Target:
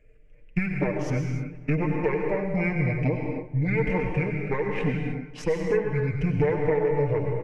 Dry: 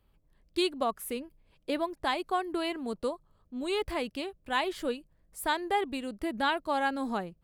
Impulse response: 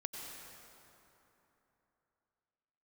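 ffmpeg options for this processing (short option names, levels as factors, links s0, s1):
-filter_complex "[0:a]firequalizer=gain_entry='entry(210,0);entry(560,-7);entry(860,9);entry(1700,-21);entry(5400,9);entry(8500,0);entry(13000,-4)':delay=0.05:min_phase=1,aeval=exprs='0.188*(cos(1*acos(clip(val(0)/0.188,-1,1)))-cos(1*PI/2))+0.0237*(cos(6*acos(clip(val(0)/0.188,-1,1)))-cos(6*PI/2))+0.00299*(cos(7*acos(clip(val(0)/0.188,-1,1)))-cos(7*PI/2))':c=same,highshelf=f=5500:t=q:w=3:g=-11.5,asplit=2[s0][s1];[s1]alimiter=limit=0.0891:level=0:latency=1:release=39,volume=1.26[s2];[s0][s2]amix=inputs=2:normalize=0,acompressor=threshold=0.0398:ratio=10,aecho=1:1:3.5:0.66,asetrate=23361,aresample=44100,atempo=1.88775,asplit=2[s3][s4];[s4]adelay=278,lowpass=f=1600:p=1,volume=0.158,asplit=2[s5][s6];[s6]adelay=278,lowpass=f=1600:p=1,volume=0.38,asplit=2[s7][s8];[s8]adelay=278,lowpass=f=1600:p=1,volume=0.38[s9];[s3][s5][s7][s9]amix=inputs=4:normalize=0[s10];[1:a]atrim=start_sample=2205,afade=t=out:st=0.38:d=0.01,atrim=end_sample=17199[s11];[s10][s11]afir=irnorm=-1:irlink=0,volume=2.51"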